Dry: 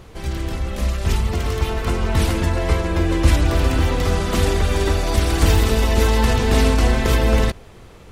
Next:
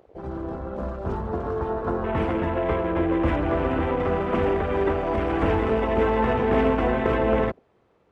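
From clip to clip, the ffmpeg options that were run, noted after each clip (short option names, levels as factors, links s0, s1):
-af "bandpass=f=600:t=q:w=0.54:csg=0,afwtdn=0.02,volume=1.12"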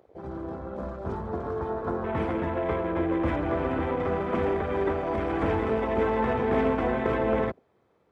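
-af "highpass=66,bandreject=f=2800:w=11,volume=0.668"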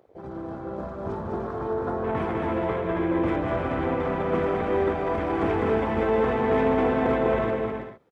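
-filter_complex "[0:a]equalizer=f=67:w=4.4:g=-7.5,asplit=2[s0][s1];[s1]aecho=0:1:200|320|392|435.2|461.1:0.631|0.398|0.251|0.158|0.1[s2];[s0][s2]amix=inputs=2:normalize=0"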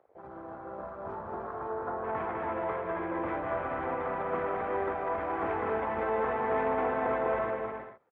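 -filter_complex "[0:a]acrossover=split=570 2200:gain=0.224 1 0.1[s0][s1][s2];[s0][s1][s2]amix=inputs=3:normalize=0,volume=0.841"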